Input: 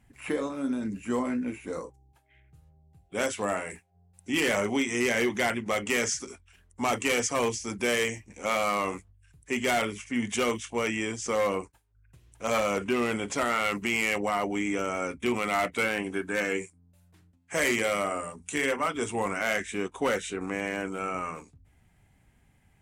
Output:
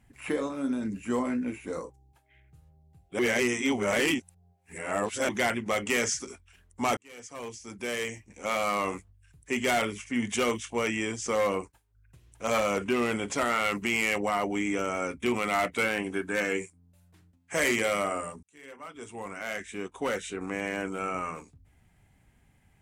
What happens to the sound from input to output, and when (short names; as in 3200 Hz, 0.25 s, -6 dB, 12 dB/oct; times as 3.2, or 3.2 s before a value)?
3.19–5.29 reverse
6.97–8.91 fade in
18.43–20.86 fade in